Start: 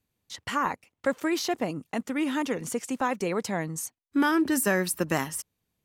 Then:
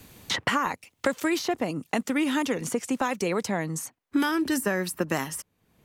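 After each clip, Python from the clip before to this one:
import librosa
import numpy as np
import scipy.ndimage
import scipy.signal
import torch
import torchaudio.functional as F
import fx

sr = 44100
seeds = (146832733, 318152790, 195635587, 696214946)

y = fx.band_squash(x, sr, depth_pct=100)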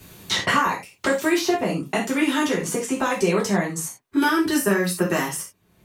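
y = fx.rev_gated(x, sr, seeds[0], gate_ms=120, shape='falling', drr_db=-4.0)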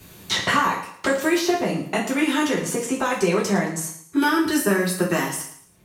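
y = fx.echo_feedback(x, sr, ms=111, feedback_pct=34, wet_db=-12.0)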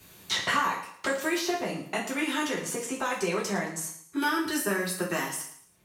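y = fx.low_shelf(x, sr, hz=480.0, db=-6.5)
y = y * librosa.db_to_amplitude(-5.0)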